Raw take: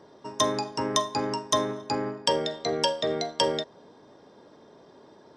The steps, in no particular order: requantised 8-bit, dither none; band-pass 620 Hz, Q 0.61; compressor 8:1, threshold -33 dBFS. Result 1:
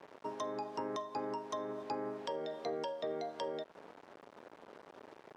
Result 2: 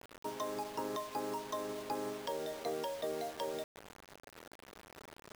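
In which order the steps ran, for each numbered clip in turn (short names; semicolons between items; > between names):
requantised > compressor > band-pass; compressor > band-pass > requantised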